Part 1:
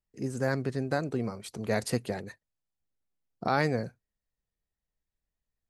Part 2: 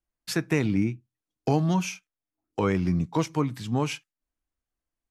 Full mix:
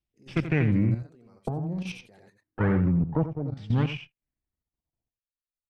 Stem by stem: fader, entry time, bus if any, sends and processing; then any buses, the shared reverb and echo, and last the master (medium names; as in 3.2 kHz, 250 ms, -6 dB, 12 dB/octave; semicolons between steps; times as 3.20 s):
-13.0 dB, 0.00 s, no send, echo send -6 dB, peak limiter -24 dBFS, peak gain reduction 11.5 dB
-2.0 dB, 0.00 s, no send, echo send -7.5 dB, comb filter that takes the minimum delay 0.36 ms; peaking EQ 120 Hz +12.5 dB 1.7 oct; LFO low-pass saw down 0.56 Hz 530–4300 Hz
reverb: none
echo: delay 86 ms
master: level held to a coarse grid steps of 11 dB; square tremolo 0.54 Hz, depth 60%, duty 80%